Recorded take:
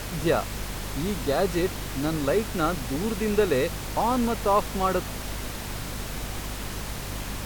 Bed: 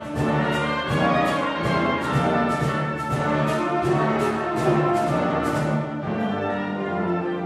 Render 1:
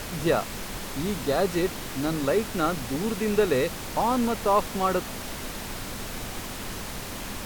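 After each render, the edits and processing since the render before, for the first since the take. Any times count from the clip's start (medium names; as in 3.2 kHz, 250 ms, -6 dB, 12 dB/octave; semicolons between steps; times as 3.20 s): hum notches 50/100/150 Hz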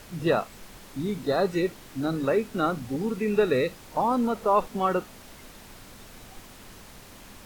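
noise print and reduce 12 dB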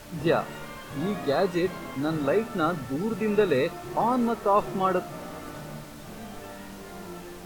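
add bed -17 dB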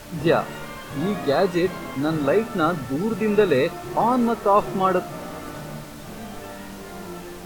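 trim +4.5 dB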